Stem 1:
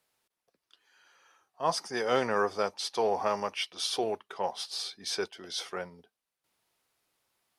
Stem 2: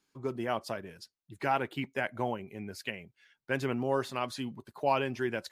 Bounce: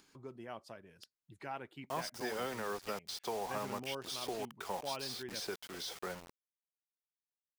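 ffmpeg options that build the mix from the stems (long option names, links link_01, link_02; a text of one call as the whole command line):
ffmpeg -i stem1.wav -i stem2.wav -filter_complex "[0:a]acrossover=split=340|770[link_01][link_02][link_03];[link_01]acompressor=threshold=-46dB:ratio=4[link_04];[link_02]acompressor=threshold=-49dB:ratio=4[link_05];[link_03]acompressor=threshold=-43dB:ratio=4[link_06];[link_04][link_05][link_06]amix=inputs=3:normalize=0,acrusher=bits=7:mix=0:aa=0.000001,adelay=300,volume=0.5dB[link_07];[1:a]equalizer=frequency=12000:width_type=o:width=0.24:gain=-5.5,volume=-14dB[link_08];[link_07][link_08]amix=inputs=2:normalize=0,acompressor=mode=upward:threshold=-49dB:ratio=2.5" out.wav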